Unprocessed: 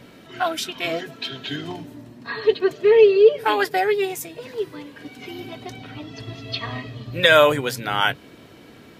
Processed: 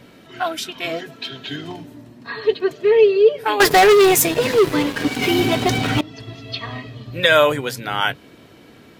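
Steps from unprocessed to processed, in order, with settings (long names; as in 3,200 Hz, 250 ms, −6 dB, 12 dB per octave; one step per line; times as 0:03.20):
0:03.60–0:06.01: leveller curve on the samples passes 5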